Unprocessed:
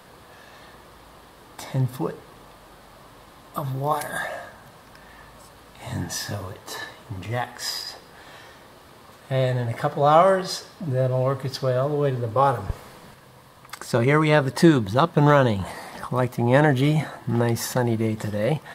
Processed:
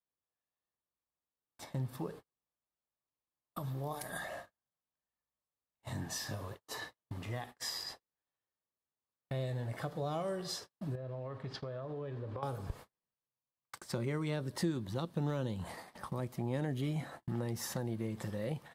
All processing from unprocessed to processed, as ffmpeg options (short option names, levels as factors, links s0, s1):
-filter_complex "[0:a]asettb=1/sr,asplit=3[s0][s1][s2];[s0]atrim=end=10.954[s3];[s1]atrim=start=10.95:end=12.43,asetpts=PTS-STARTPTS,afade=t=in:d=0.004:c=qsin,afade=t=out:st=1.476:d=0.004:c=qsin,lowpass=3700,acompressor=threshold=0.0398:ratio=10:attack=3.2:release=140:knee=1:detection=peak[s4];[s2]atrim=start=12.426[s5];[s3][s4]acrossfade=d=0.004:c1=hsin:c2=qsin[s6];[s6][s5]acrossfade=d=0.004:c1=qsin:c2=hsin,acrossover=split=470|3000[s7][s8][s9];[s8]acompressor=threshold=0.02:ratio=2.5[s10];[s7][s10][s9]amix=inputs=3:normalize=0,agate=range=0.00562:threshold=0.0158:ratio=16:detection=peak,acompressor=threshold=0.0316:ratio=2,volume=0.398"